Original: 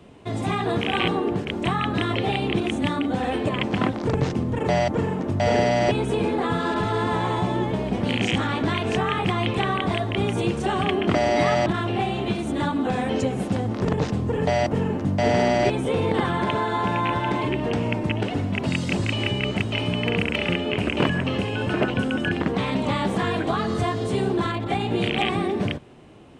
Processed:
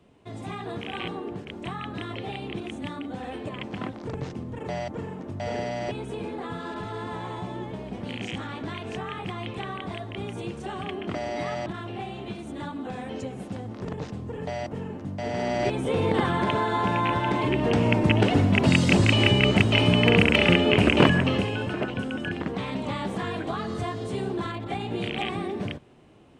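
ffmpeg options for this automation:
-af "volume=5dB,afade=t=in:st=15.3:d=0.77:silence=0.334965,afade=t=in:st=17.37:d=0.87:silence=0.501187,afade=t=out:st=20.88:d=0.87:silence=0.266073"

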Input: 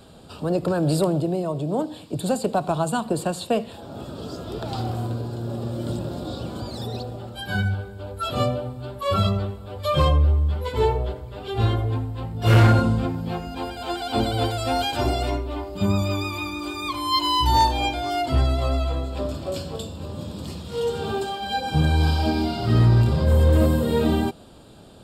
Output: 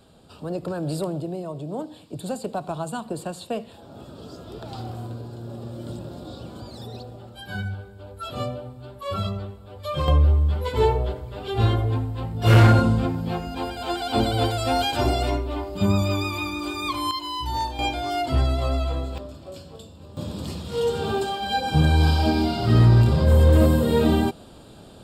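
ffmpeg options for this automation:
-af "asetnsamples=n=441:p=0,asendcmd='10.08 volume volume 1dB;17.11 volume volume -9dB;17.79 volume volume -1dB;19.18 volume volume -10.5dB;20.17 volume volume 1.5dB',volume=-6.5dB"

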